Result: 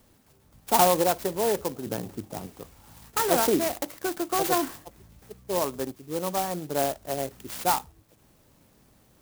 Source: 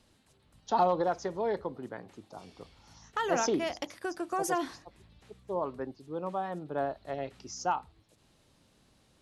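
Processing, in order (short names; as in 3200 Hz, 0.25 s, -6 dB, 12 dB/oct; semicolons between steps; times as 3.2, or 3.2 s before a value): 1.86–2.47 low shelf 440 Hz +10.5 dB; clock jitter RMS 0.097 ms; gain +6 dB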